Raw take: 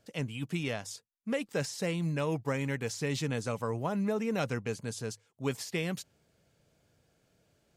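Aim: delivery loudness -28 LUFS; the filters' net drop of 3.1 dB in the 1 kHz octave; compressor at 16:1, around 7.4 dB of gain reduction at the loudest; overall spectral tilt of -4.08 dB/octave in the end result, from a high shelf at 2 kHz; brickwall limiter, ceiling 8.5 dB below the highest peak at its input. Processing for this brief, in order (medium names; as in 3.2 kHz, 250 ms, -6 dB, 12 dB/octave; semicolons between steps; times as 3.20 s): peaking EQ 1 kHz -6 dB; treble shelf 2 kHz +7.5 dB; compression 16:1, threshold -34 dBFS; trim +12.5 dB; peak limiter -18 dBFS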